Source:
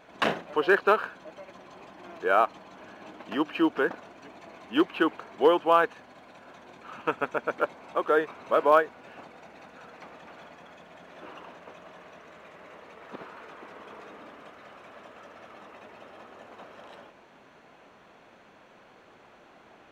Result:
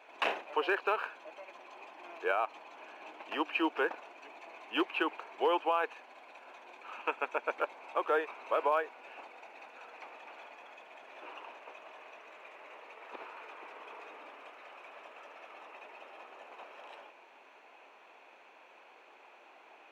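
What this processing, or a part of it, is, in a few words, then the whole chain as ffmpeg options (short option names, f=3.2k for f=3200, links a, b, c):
laptop speaker: -af "highpass=f=330:w=0.5412,highpass=f=330:w=1.3066,equalizer=f=880:t=o:w=0.57:g=6.5,equalizer=f=2.5k:t=o:w=0.4:g=11,alimiter=limit=-13.5dB:level=0:latency=1:release=97,volume=-6dB"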